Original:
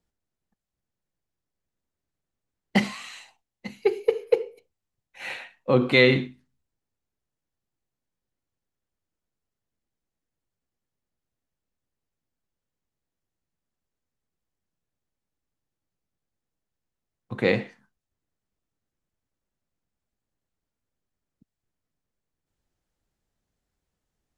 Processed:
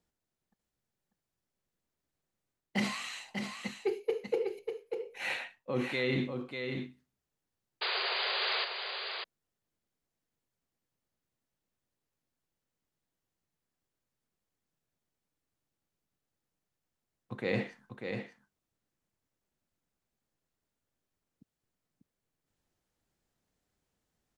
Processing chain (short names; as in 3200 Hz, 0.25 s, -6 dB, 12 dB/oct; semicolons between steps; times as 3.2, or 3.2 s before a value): low shelf 67 Hz -9 dB; reverse; compressor 16:1, threshold -28 dBFS, peak gain reduction 16.5 dB; reverse; painted sound noise, 7.81–8.65, 360–4900 Hz -33 dBFS; echo 0.593 s -6 dB